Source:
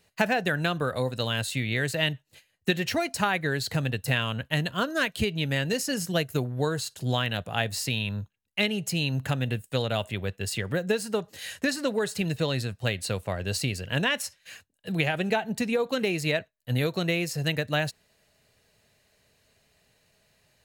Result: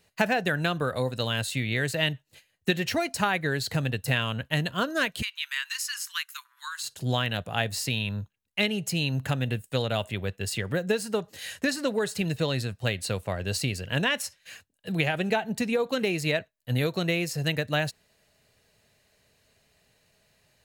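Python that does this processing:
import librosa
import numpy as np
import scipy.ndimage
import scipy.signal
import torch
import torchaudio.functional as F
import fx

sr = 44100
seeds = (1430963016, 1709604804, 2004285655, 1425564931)

y = fx.steep_highpass(x, sr, hz=1000.0, slope=96, at=(5.21, 6.82), fade=0.02)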